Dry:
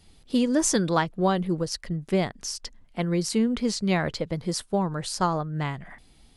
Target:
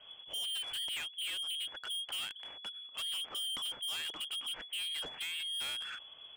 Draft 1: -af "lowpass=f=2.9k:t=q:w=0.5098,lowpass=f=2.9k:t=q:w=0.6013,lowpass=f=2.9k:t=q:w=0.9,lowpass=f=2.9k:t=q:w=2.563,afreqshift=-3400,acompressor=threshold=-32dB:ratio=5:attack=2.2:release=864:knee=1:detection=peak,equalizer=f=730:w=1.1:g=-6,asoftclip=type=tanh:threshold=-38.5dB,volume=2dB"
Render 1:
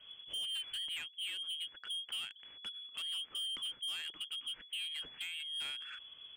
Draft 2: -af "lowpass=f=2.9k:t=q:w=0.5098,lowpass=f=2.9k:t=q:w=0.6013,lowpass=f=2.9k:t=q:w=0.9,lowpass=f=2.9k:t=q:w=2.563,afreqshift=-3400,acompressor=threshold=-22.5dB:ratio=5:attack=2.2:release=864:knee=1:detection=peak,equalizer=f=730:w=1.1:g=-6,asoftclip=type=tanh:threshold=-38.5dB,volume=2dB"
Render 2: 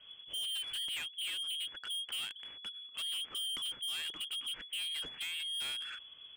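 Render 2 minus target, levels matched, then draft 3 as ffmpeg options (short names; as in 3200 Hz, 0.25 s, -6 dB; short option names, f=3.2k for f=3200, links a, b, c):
1000 Hz band -4.5 dB
-af "lowpass=f=2.9k:t=q:w=0.5098,lowpass=f=2.9k:t=q:w=0.6013,lowpass=f=2.9k:t=q:w=0.9,lowpass=f=2.9k:t=q:w=2.563,afreqshift=-3400,acompressor=threshold=-22.5dB:ratio=5:attack=2.2:release=864:knee=1:detection=peak,equalizer=f=730:w=1.1:g=5.5,asoftclip=type=tanh:threshold=-38.5dB,volume=2dB"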